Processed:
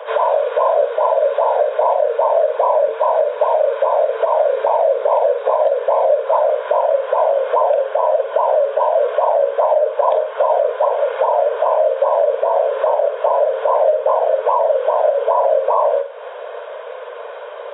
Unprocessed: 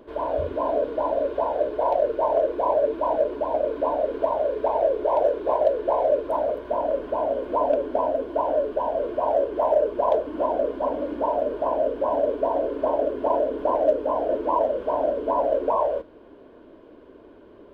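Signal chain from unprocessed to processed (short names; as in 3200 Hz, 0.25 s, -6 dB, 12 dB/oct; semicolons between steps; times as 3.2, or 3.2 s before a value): steep high-pass 470 Hz 96 dB/oct; notch 2900 Hz, Q 20; flutter echo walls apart 8 m, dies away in 0.28 s; compressor 3:1, threshold -39 dBFS, peak gain reduction 18 dB; maximiser +28 dB; gain -5 dB; AAC 16 kbps 16000 Hz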